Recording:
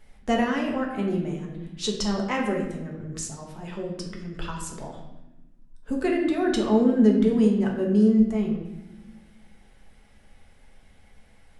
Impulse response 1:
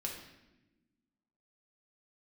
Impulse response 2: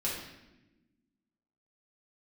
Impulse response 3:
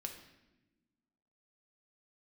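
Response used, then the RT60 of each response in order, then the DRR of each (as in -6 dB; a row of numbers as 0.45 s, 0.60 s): 1; 1.0 s, 1.0 s, no single decay rate; -1.0 dB, -6.5 dB, 3.0 dB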